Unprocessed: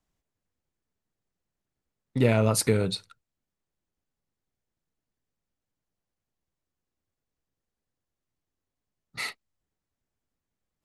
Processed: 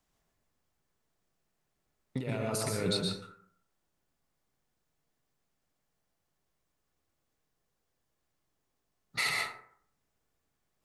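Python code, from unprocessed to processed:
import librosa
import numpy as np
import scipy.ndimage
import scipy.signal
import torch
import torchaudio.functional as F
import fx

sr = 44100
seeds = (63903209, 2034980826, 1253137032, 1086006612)

y = fx.low_shelf(x, sr, hz=320.0, db=-5.5)
y = fx.over_compress(y, sr, threshold_db=-33.0, ratio=-1.0)
y = fx.rev_plate(y, sr, seeds[0], rt60_s=0.62, hf_ratio=0.45, predelay_ms=105, drr_db=-0.5)
y = y * librosa.db_to_amplitude(-1.5)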